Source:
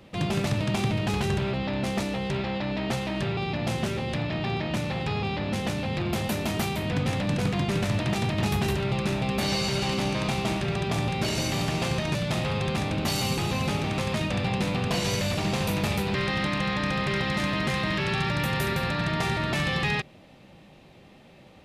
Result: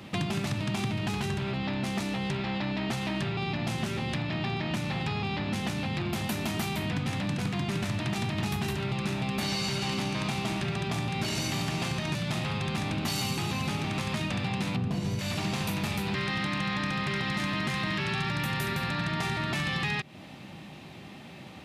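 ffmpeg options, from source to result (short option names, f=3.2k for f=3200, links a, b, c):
-filter_complex "[0:a]asettb=1/sr,asplit=3[a][b][c];[a]atrim=end=14.764[d];[b]atrim=start=14.76:end=15.19,asetpts=PTS-STARTPTS,afade=t=in:d=0.004:c=qsin,afade=t=out:st=0.426:d=0.004:c=qsin,tiltshelf=f=670:g=8[e];[c]atrim=start=15.186[f];[d][e]acrossfade=d=0.004:c1=hsin:c2=qsin[g];[g][f]acrossfade=d=0.004:c1=qsin:c2=hsin,acompressor=threshold=-35dB:ratio=6,highpass=90,equalizer=f=510:t=o:w=0.64:g=-8.5,volume=8dB"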